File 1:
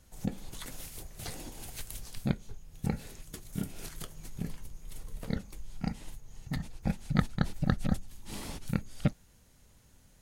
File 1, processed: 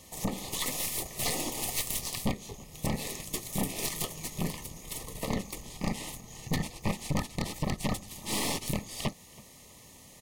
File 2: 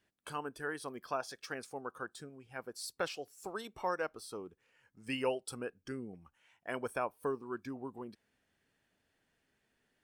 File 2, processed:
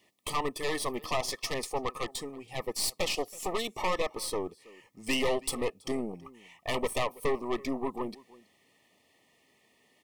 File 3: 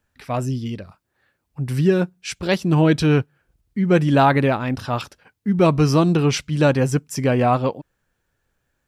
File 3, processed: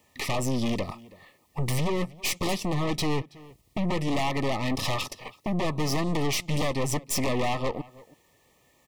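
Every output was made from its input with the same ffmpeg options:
-filter_complex "[0:a]highpass=frequency=290:poles=1,acompressor=threshold=-32dB:ratio=10,aeval=exprs='0.0794*sin(PI/2*3.55*val(0)/0.0794)':channel_layout=same,asplit=2[link_01][link_02];[link_02]adelay=326.5,volume=-21dB,highshelf=frequency=4000:gain=-7.35[link_03];[link_01][link_03]amix=inputs=2:normalize=0,aeval=exprs='(tanh(22.4*val(0)+0.8)-tanh(0.8))/22.4':channel_layout=same,asuperstop=centerf=1500:order=20:qfactor=3.2,volume=3.5dB"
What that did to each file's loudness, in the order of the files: +3.5, +8.0, −9.5 LU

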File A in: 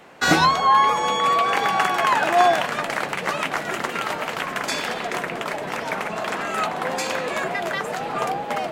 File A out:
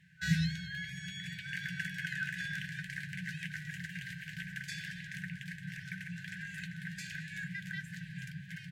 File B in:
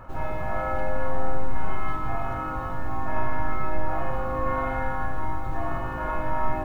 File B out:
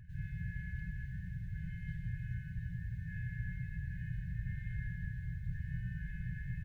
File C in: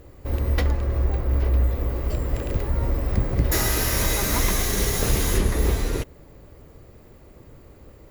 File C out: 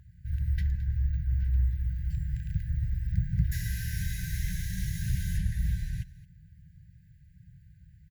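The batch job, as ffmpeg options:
-filter_complex "[0:a]highpass=frequency=110:poles=1,afftfilt=real='re*(1-between(b*sr/4096,190,1500))':imag='im*(1-between(b*sr/4096,190,1500))':win_size=4096:overlap=0.75,firequalizer=gain_entry='entry(660,0);entry(2200,-17);entry(3900,-17);entry(7000,-18)':delay=0.05:min_phase=1,asplit=2[link_01][link_02];[link_02]aecho=0:1:219:0.126[link_03];[link_01][link_03]amix=inputs=2:normalize=0"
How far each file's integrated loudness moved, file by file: −18.0, −12.0, −8.0 LU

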